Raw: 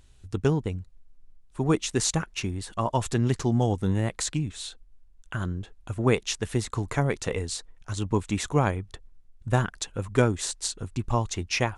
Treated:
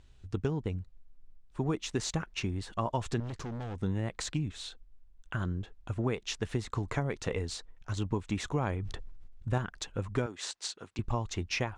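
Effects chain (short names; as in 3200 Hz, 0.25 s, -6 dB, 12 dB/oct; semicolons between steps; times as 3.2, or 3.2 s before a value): median filter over 3 samples; 10.26–10.99 weighting filter A; compressor 6:1, threshold -25 dBFS, peak gain reduction 10 dB; 3.2–3.81 hard clip -33.5 dBFS, distortion -14 dB; air absorption 64 m; 8.57–9.58 sustainer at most 23 dB/s; gain -2 dB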